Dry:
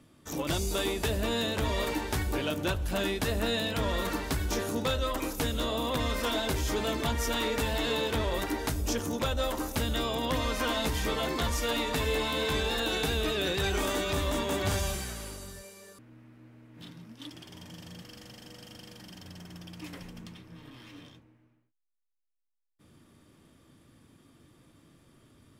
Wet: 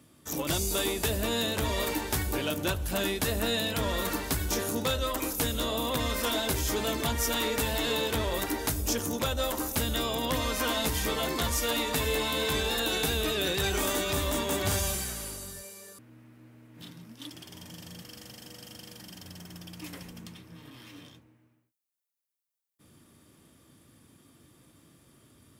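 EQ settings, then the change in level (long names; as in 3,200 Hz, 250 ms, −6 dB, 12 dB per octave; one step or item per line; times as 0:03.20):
high-pass filter 45 Hz
high-shelf EQ 7,400 Hz +11 dB
0.0 dB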